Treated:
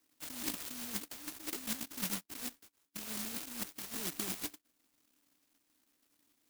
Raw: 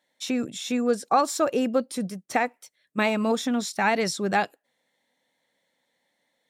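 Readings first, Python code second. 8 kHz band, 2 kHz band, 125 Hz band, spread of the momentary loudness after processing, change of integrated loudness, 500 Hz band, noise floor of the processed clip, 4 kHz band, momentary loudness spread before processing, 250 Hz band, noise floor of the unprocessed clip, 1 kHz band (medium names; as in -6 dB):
-5.5 dB, -18.5 dB, -14.5 dB, 7 LU, -14.0 dB, -27.5 dB, -78 dBFS, -9.5 dB, 8 LU, -19.0 dB, -75 dBFS, -26.5 dB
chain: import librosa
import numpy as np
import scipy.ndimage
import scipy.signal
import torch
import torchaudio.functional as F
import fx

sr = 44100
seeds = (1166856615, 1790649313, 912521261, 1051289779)

y = fx.halfwave_hold(x, sr)
y = fx.vowel_filter(y, sr, vowel='u')
y = fx.high_shelf(y, sr, hz=4100.0, db=5.0)
y = fx.over_compress(y, sr, threshold_db=-42.0, ratio=-1.0)
y = (np.kron(scipy.signal.resample_poly(y, 1, 6), np.eye(6)[0]) * 6)[:len(y)]
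y = fx.brickwall_bandstop(y, sr, low_hz=710.0, high_hz=2600.0)
y = fx.clock_jitter(y, sr, seeds[0], jitter_ms=0.14)
y = y * librosa.db_to_amplitude(-5.5)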